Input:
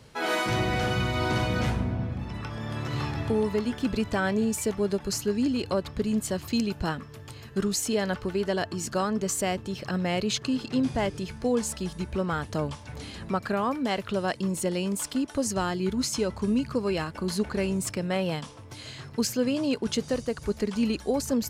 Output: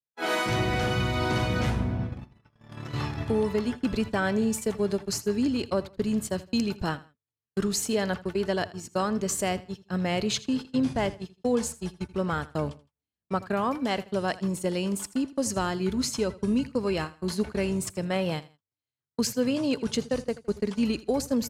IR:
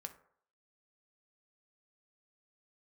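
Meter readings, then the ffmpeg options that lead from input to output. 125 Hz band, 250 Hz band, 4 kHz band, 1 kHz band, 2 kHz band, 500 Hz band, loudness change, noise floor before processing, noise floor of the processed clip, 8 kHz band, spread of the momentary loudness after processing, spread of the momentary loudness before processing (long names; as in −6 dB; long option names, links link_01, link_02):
−0.5 dB, 0.0 dB, −0.5 dB, 0.0 dB, −0.5 dB, 0.0 dB, 0.0 dB, −45 dBFS, below −85 dBFS, −1.0 dB, 7 LU, 7 LU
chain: -filter_complex "[0:a]agate=range=-55dB:threshold=-30dB:ratio=16:detection=peak,asplit=2[link_01][link_02];[link_02]aecho=0:1:81|162:0.119|0.0333[link_03];[link_01][link_03]amix=inputs=2:normalize=0"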